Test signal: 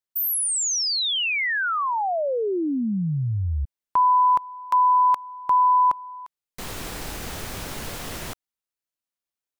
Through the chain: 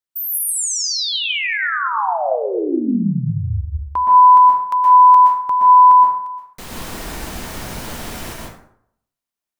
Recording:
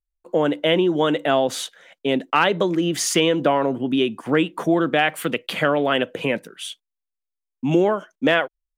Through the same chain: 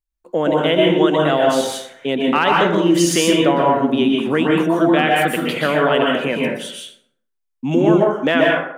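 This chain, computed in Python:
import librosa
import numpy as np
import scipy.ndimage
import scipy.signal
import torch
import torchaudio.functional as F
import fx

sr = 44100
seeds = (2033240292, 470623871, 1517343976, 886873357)

y = fx.rev_plate(x, sr, seeds[0], rt60_s=0.69, hf_ratio=0.55, predelay_ms=110, drr_db=-2.0)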